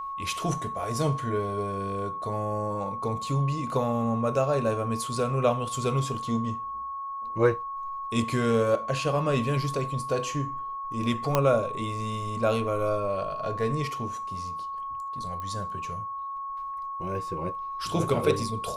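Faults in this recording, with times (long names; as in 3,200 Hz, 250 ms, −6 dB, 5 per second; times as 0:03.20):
whistle 1,100 Hz −32 dBFS
0:11.35: click −8 dBFS
0:15.40: click −24 dBFS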